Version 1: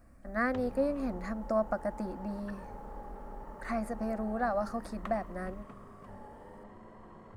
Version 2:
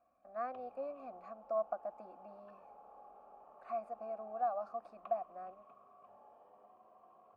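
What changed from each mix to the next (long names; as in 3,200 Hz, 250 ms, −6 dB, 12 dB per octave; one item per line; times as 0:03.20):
master: add formant filter a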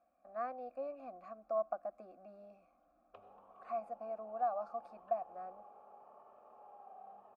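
background: entry +2.60 s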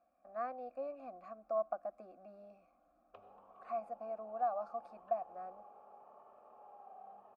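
nothing changed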